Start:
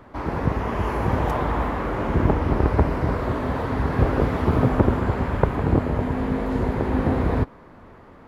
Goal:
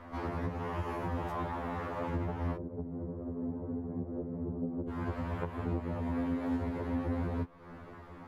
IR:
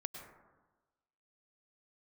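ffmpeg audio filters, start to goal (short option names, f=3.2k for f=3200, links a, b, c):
-filter_complex "[0:a]acompressor=threshold=-31dB:ratio=5,asettb=1/sr,asplit=3[a][b][c];[a]atrim=end=2.564[d];[b]atrim=start=2.56:end=4.89,asetpts=PTS-STARTPTS,afade=t=in:d=0.004:c=qsin,afade=t=out:st=2.326:d=0.004:c=qsin,asuperpass=centerf=220:order=4:qfactor=0.61[e];[c]atrim=start=4.886[f];[d][e]acrossfade=d=0.004:c1=hsin:c2=qsin[g];[g][f]acrossfade=d=0.004:c1=qsin:c2=hsin,afftfilt=real='re*2*eq(mod(b,4),0)':imag='im*2*eq(mod(b,4),0)':win_size=2048:overlap=0.75"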